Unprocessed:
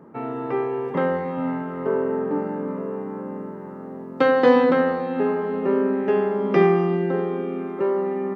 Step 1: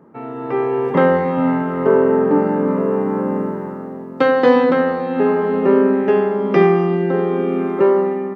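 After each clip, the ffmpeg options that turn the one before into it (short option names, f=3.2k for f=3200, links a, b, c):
-af "dynaudnorm=f=170:g=7:m=14dB,volume=-1dB"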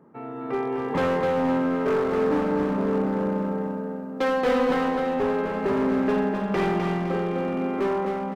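-filter_complex "[0:a]asplit=2[a][b];[b]aecho=0:1:37|57:0.224|0.126[c];[a][c]amix=inputs=2:normalize=0,asoftclip=type=hard:threshold=-14dB,asplit=2[d][e];[e]aecho=0:1:256|512|768|1024|1280:0.596|0.244|0.1|0.0411|0.0168[f];[d][f]amix=inputs=2:normalize=0,volume=-6.5dB"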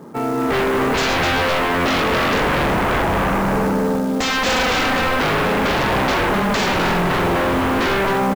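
-af "aresample=16000,aeval=exprs='0.178*sin(PI/2*3.98*val(0)/0.178)':c=same,aresample=44100,acrusher=bits=5:mode=log:mix=0:aa=0.000001"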